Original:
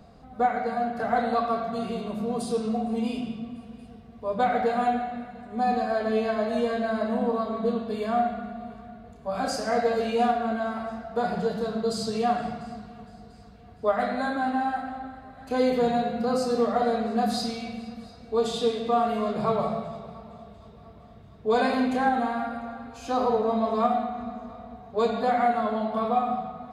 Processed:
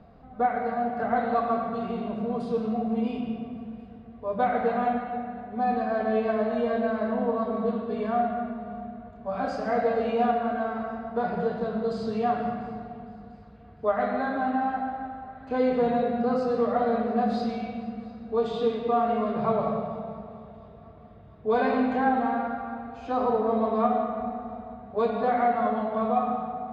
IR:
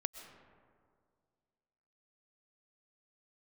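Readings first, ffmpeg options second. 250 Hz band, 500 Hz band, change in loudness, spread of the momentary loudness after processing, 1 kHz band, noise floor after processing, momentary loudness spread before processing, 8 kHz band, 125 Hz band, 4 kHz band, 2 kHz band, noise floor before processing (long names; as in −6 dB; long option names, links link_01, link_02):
0.0 dB, 0.0 dB, −0.5 dB, 13 LU, −0.5 dB, −48 dBFS, 15 LU, below −15 dB, 0.0 dB, −9.0 dB, −1.5 dB, −49 dBFS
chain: -filter_complex "[0:a]lowpass=2500[link_01];[1:a]atrim=start_sample=2205[link_02];[link_01][link_02]afir=irnorm=-1:irlink=0"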